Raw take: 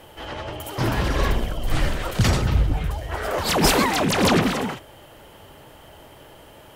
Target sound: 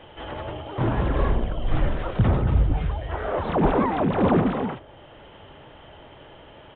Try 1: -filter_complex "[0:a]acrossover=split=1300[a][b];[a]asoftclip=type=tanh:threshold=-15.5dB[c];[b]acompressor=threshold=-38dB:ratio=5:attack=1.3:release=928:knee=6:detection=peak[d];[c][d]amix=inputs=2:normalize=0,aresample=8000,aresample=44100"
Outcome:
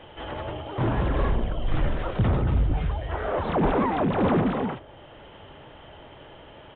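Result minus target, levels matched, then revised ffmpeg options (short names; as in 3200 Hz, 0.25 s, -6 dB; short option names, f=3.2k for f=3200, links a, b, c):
soft clip: distortion +19 dB
-filter_complex "[0:a]acrossover=split=1300[a][b];[a]asoftclip=type=tanh:threshold=-3.5dB[c];[b]acompressor=threshold=-38dB:ratio=5:attack=1.3:release=928:knee=6:detection=peak[d];[c][d]amix=inputs=2:normalize=0,aresample=8000,aresample=44100"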